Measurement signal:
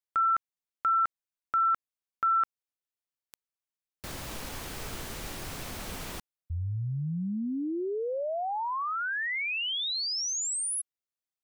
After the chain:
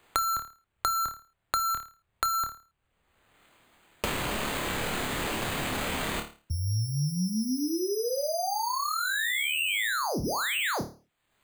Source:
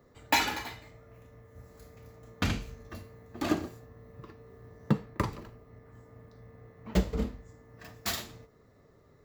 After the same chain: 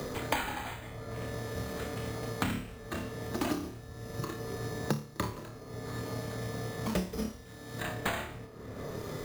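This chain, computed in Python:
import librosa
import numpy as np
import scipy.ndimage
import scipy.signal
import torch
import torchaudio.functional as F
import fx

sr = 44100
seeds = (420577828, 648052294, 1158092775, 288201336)

y = np.repeat(x[::8], 8)[:len(x)]
y = fx.room_flutter(y, sr, wall_m=4.7, rt60_s=0.3)
y = fx.band_squash(y, sr, depth_pct=100)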